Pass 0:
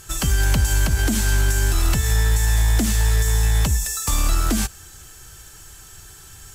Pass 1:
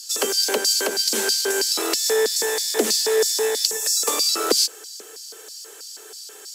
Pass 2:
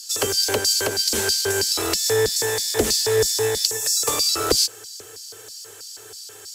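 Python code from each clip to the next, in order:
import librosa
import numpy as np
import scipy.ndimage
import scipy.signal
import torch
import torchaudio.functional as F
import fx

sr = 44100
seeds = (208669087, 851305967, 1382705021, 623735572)

y1 = fx.filter_lfo_highpass(x, sr, shape='square', hz=3.1, low_hz=440.0, high_hz=4700.0, q=7.7)
y1 = scipy.signal.sosfilt(scipy.signal.butter(12, 200.0, 'highpass', fs=sr, output='sos'), y1)
y1 = y1 * librosa.db_to_amplitude(1.5)
y2 = fx.octave_divider(y1, sr, octaves=2, level_db=-4.0)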